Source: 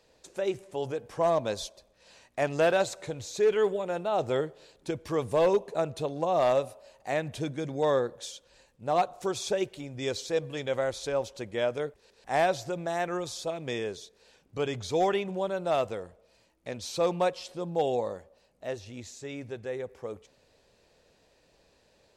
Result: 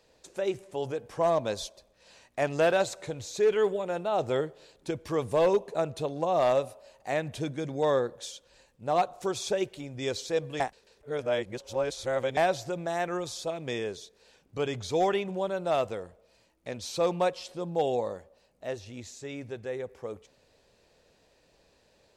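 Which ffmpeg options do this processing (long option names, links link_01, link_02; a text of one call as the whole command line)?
ffmpeg -i in.wav -filter_complex "[0:a]asplit=3[link_01][link_02][link_03];[link_01]atrim=end=10.602[link_04];[link_02]atrim=start=10.598:end=12.372,asetpts=PTS-STARTPTS,areverse[link_05];[link_03]atrim=start=12.368[link_06];[link_04][link_05]acrossfade=duration=0.004:curve1=hsin:curve2=hsin[link_07];[link_07][link_06]acrossfade=duration=0.004:curve1=hsin:curve2=hsin" out.wav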